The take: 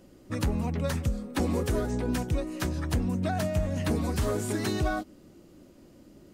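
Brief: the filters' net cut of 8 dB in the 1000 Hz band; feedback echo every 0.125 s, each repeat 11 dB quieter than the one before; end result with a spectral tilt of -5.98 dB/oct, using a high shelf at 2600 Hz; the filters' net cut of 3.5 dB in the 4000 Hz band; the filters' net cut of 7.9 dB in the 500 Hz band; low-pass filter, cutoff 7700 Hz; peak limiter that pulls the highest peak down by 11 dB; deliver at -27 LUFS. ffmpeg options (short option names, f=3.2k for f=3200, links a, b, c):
-af "lowpass=7.7k,equalizer=f=500:t=o:g=-8.5,equalizer=f=1k:t=o:g=-8,highshelf=f=2.6k:g=4,equalizer=f=4k:t=o:g=-7,alimiter=level_in=5.5dB:limit=-24dB:level=0:latency=1,volume=-5.5dB,aecho=1:1:125|250|375:0.282|0.0789|0.0221,volume=10.5dB"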